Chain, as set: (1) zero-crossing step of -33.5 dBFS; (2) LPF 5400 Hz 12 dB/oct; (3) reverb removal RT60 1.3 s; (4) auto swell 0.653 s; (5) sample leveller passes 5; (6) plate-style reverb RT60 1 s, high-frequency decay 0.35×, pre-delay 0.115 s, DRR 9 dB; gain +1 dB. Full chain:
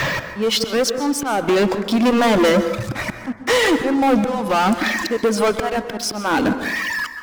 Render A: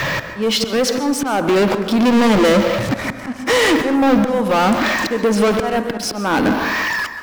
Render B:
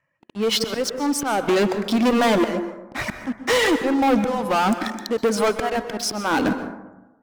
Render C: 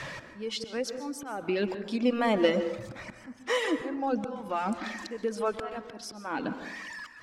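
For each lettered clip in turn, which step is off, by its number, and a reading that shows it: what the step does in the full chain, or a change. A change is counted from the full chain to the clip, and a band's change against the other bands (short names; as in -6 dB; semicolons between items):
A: 3, loudness change +2.5 LU; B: 1, distortion -20 dB; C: 5, crest factor change +9.0 dB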